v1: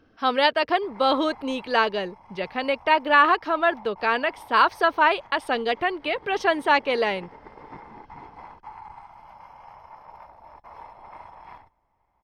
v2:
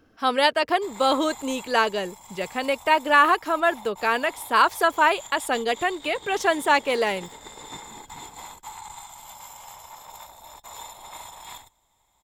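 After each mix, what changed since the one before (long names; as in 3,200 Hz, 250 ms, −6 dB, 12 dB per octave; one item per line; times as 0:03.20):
background: remove moving average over 12 samples
master: remove Savitzky-Golay smoothing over 15 samples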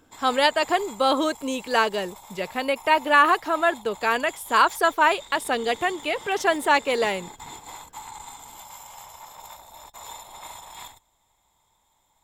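background: entry −0.70 s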